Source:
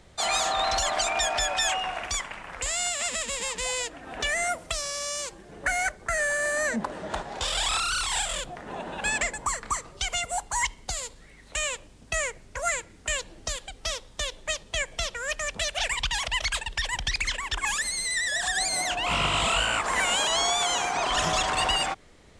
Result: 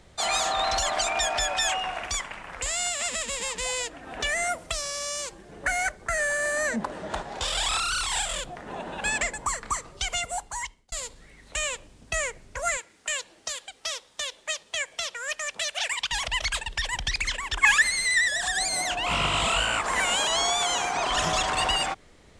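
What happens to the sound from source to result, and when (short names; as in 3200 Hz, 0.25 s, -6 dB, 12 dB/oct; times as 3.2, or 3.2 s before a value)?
10.23–10.92 fade out
12.77–16.11 HPF 770 Hz 6 dB/oct
17.62–18.27 bell 1900 Hz +13.5 dB -> +6 dB 1.6 oct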